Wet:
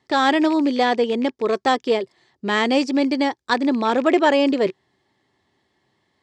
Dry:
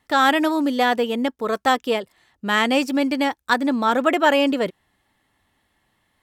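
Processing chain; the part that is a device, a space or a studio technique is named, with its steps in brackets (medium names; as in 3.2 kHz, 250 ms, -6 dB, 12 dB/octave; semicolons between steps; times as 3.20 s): car door speaker with a rattle (rattle on loud lows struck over -42 dBFS, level -23 dBFS; cabinet simulation 100–7200 Hz, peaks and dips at 130 Hz +5 dB, 380 Hz +10 dB, 1.4 kHz -6 dB, 2.7 kHz -5 dB, 4.8 kHz +5 dB)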